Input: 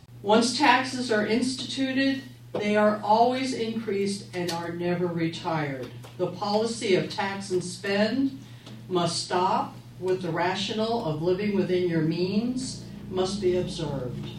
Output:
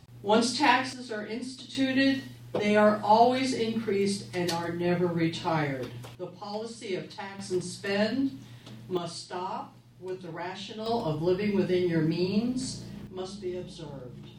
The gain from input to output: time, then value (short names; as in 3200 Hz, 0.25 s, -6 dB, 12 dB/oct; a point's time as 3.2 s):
-3 dB
from 0.93 s -11 dB
from 1.75 s 0 dB
from 6.15 s -10.5 dB
from 7.39 s -3 dB
from 8.97 s -10.5 dB
from 10.86 s -1.5 dB
from 13.07 s -10.5 dB